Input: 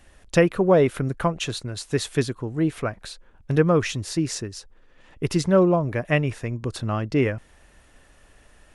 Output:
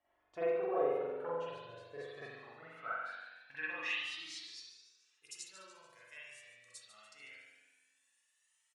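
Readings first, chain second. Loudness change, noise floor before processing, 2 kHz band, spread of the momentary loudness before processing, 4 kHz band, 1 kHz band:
−16.5 dB, −55 dBFS, −11.5 dB, 13 LU, −13.0 dB, −14.0 dB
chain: tilt shelving filter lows −6 dB, about 910 Hz
tuned comb filter 100 Hz, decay 0.22 s, harmonics odd, mix 70%
on a send: repeating echo 145 ms, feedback 50%, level −12 dB
on the sum: spring reverb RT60 1.2 s, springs 42 ms, chirp 35 ms, DRR −8.5 dB
band-pass filter sweep 610 Hz → 7,700 Hz, 0:01.98–0:05.35
flanger whose copies keep moving one way rising 0.23 Hz
level −3.5 dB

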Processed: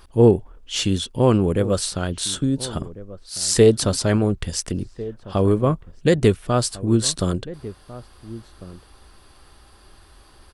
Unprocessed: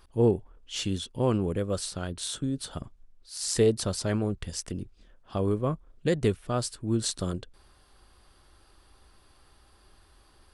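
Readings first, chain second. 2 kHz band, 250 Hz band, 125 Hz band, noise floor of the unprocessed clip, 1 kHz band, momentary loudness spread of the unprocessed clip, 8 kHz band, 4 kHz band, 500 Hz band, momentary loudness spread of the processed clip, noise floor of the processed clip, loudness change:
+9.0 dB, +9.0 dB, +9.0 dB, −60 dBFS, +9.0 dB, 13 LU, +9.0 dB, +9.0 dB, +9.0 dB, 20 LU, −51 dBFS, +9.0 dB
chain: slap from a distant wall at 240 metres, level −17 dB
level +9 dB

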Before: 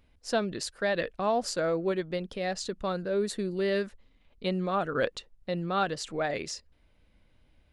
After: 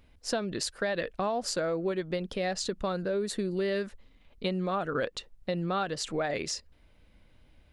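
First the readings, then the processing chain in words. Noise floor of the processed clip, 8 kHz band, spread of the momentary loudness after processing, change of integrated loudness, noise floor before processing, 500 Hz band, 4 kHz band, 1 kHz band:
−61 dBFS, +2.5 dB, 5 LU, −1.0 dB, −64 dBFS, −1.5 dB, +1.0 dB, −2.0 dB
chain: downward compressor, threshold −31 dBFS, peak gain reduction 9.5 dB
level +4 dB

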